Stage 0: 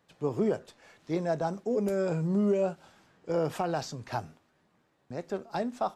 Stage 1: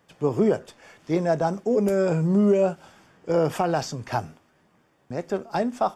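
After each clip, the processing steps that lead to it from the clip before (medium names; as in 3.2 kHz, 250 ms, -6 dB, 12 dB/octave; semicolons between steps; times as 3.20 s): band-stop 4 kHz, Q 6.8; trim +7 dB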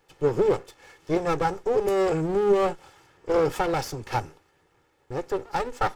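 comb filter that takes the minimum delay 2.3 ms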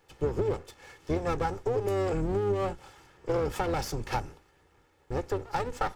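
octave divider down 2 oct, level 0 dB; compression 4:1, threshold -26 dBFS, peak gain reduction 10.5 dB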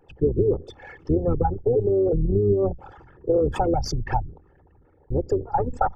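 resonances exaggerated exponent 3; trim +8 dB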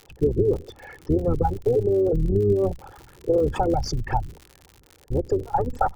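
crackle 79 per s -33 dBFS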